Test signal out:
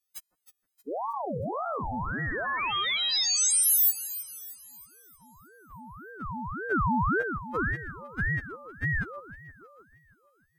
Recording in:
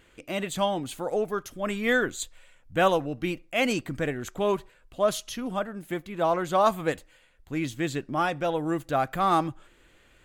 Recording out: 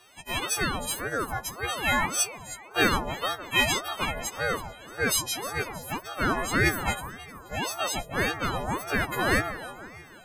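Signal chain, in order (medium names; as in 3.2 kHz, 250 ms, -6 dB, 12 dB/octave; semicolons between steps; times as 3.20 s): partials quantised in pitch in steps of 4 st; echo whose repeats swap between lows and highs 157 ms, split 960 Hz, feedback 68%, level -11 dB; ring modulator with a swept carrier 670 Hz, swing 55%, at 1.8 Hz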